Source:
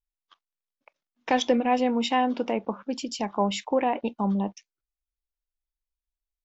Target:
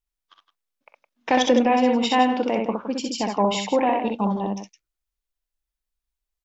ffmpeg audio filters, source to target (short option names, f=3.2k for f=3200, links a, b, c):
-af "aecho=1:1:45|63|164:0.158|0.668|0.282,volume=3dB"